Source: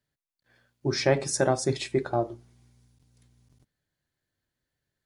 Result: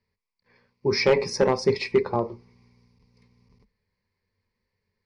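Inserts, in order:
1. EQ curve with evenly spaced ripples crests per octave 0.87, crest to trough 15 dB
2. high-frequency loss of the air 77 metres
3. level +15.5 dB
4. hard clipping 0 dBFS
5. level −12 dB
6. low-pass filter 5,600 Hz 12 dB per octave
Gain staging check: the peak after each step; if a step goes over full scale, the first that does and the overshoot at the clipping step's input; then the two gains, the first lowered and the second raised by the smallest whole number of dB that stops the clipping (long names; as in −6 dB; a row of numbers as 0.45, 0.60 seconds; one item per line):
−6.5, −7.0, +8.5, 0.0, −12.0, −11.5 dBFS
step 3, 8.5 dB
step 3 +6.5 dB, step 5 −3 dB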